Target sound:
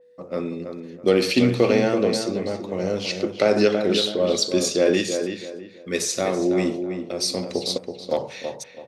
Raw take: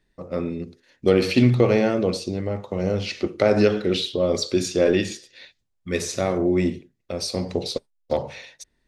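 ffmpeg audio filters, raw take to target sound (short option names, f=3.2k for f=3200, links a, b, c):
-filter_complex "[0:a]highpass=180,asplit=2[a][b];[b]adelay=328,lowpass=f=2.2k:p=1,volume=-7dB,asplit=2[c][d];[d]adelay=328,lowpass=f=2.2k:p=1,volume=0.32,asplit=2[e][f];[f]adelay=328,lowpass=f=2.2k:p=1,volume=0.32,asplit=2[g][h];[h]adelay=328,lowpass=f=2.2k:p=1,volume=0.32[i];[a][c][e][g][i]amix=inputs=5:normalize=0,aeval=exprs='val(0)+0.00282*sin(2*PI*490*n/s)':c=same,adynamicequalizer=threshold=0.00708:dfrequency=3600:dqfactor=0.7:tfrequency=3600:tqfactor=0.7:attack=5:release=100:ratio=0.375:range=3:mode=boostabove:tftype=highshelf"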